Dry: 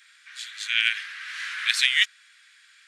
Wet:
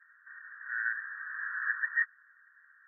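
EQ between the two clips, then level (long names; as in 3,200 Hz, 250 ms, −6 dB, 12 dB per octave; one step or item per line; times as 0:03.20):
high-pass filter 910 Hz 12 dB per octave
linear-phase brick-wall low-pass 1,900 Hz
0.0 dB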